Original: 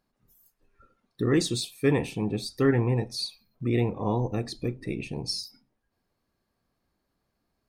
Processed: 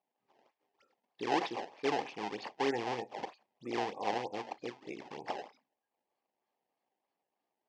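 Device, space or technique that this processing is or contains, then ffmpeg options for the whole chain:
circuit-bent sampling toy: -af "acrusher=samples=22:mix=1:aa=0.000001:lfo=1:lforange=35.2:lforate=3.2,highpass=440,equalizer=frequency=810:width_type=q:width=4:gain=8,equalizer=frequency=1400:width_type=q:width=4:gain=-10,equalizer=frequency=3900:width_type=q:width=4:gain=-6,lowpass=frequency=5100:width=0.5412,lowpass=frequency=5100:width=1.3066,volume=-5dB"

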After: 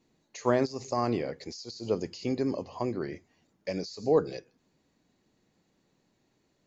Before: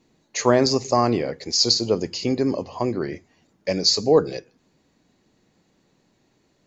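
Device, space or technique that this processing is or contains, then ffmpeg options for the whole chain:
de-esser from a sidechain: -filter_complex "[0:a]asplit=2[link_01][link_02];[link_02]highpass=4000,apad=whole_len=294013[link_03];[link_01][link_03]sidechaincompress=threshold=-34dB:ratio=12:attack=3.2:release=87,volume=-7.5dB"

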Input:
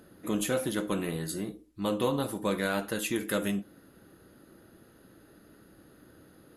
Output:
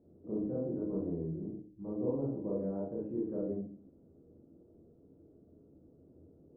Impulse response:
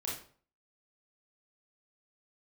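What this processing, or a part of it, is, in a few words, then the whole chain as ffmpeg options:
next room: -filter_complex "[0:a]asettb=1/sr,asplit=3[link_01][link_02][link_03];[link_01]atrim=end=1.374[link_04];[link_02]atrim=start=1.37:end=1.92,asetpts=PTS-STARTPTS,afade=type=in:duration=0.004:curve=qsin,afade=type=out:start_time=0.546:duration=0.004:curve=qsin,equalizer=frequency=520:width_type=o:width=1.1:gain=-5.5[link_05];[link_03]atrim=start=1.916[link_06];[link_04][link_05]acrossfade=duration=0.004:curve1=hsin:curve2=qsin[link_07];[link_07][link_06]acrossfade=duration=0.004:curve1=qsin:curve2=hsin,lowpass=frequency=610:width=0.5412,lowpass=frequency=610:width=1.3066[link_08];[1:a]atrim=start_sample=2205[link_09];[link_08][link_09]afir=irnorm=-1:irlink=0,volume=-6dB"

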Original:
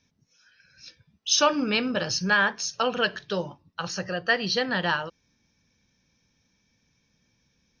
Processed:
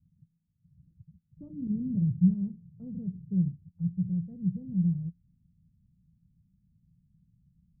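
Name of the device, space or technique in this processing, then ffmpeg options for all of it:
the neighbour's flat through the wall: -filter_complex "[0:a]lowpass=frequency=160:width=0.5412,lowpass=frequency=160:width=1.3066,equalizer=frequency=170:width_type=o:width=0.42:gain=7.5,asettb=1/sr,asplit=3[link_01][link_02][link_03];[link_01]atrim=end=1.674[link_04];[link_02]atrim=start=1.67:end=3.48,asetpts=PTS-STARTPTS,afade=type=in:duration=0.004:curve=qsin,afade=type=out:start_time=1.806:duration=0.004:curve=qsin,adynamicequalizer=threshold=0.00631:dfrequency=320:dqfactor=0.74:tfrequency=320:tqfactor=0.74:attack=5:release=100:ratio=0.375:range=2:mode=boostabove:tftype=bell[link_05];[link_03]atrim=start=3.476[link_06];[link_04][link_05]acrossfade=duration=0.004:curve1=hsin:curve2=qsin[link_07];[link_07][link_06]acrossfade=duration=0.004:curve1=qsin:curve2=hsin,volume=7dB"

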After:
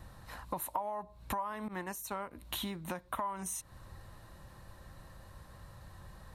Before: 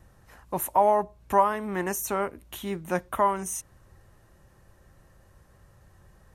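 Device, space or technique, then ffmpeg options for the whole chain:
serial compression, leveller first: -filter_complex "[0:a]asettb=1/sr,asplit=3[link_01][link_02][link_03];[link_01]atrim=end=1.684[link_04];[link_02]atrim=start=1.68:end=2.31,asetpts=PTS-STARTPTS,afade=type=in:duration=0.004:curve=qsin,afade=type=out:start_time=0.626:duration=0.004:curve=qsin,agate=range=-33dB:threshold=-24dB:ratio=3:detection=peak[link_05];[link_03]atrim=start=2.306[link_06];[link_04][link_05]acrossfade=duration=0.004:curve1=hsin:curve2=qsin[link_07];[link_07][link_06]acrossfade=duration=0.004:curve1=qsin:curve2=hsin,acompressor=threshold=-26dB:ratio=3,acompressor=threshold=-40dB:ratio=6,equalizer=frequency=400:width_type=o:width=0.33:gain=-7,equalizer=frequency=1000:width_type=o:width=0.33:gain=5,equalizer=frequency=4000:width_type=o:width=0.33:gain=9,equalizer=frequency=6300:width_type=o:width=0.33:gain=-4,volume=4dB"

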